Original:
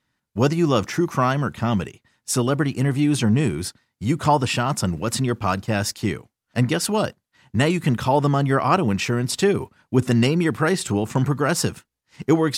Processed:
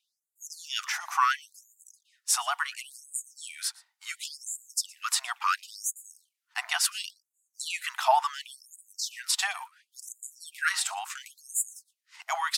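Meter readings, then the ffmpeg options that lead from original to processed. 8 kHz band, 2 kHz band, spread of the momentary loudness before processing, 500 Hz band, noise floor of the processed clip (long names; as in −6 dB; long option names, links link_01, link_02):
−0.5 dB, −4.0 dB, 8 LU, −20.0 dB, −85 dBFS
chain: -af "aecho=1:1:117:0.0708,afftfilt=real='re*gte(b*sr/1024,640*pow(6800/640,0.5+0.5*sin(2*PI*0.71*pts/sr)))':imag='im*gte(b*sr/1024,640*pow(6800/640,0.5+0.5*sin(2*PI*0.71*pts/sr)))':win_size=1024:overlap=0.75"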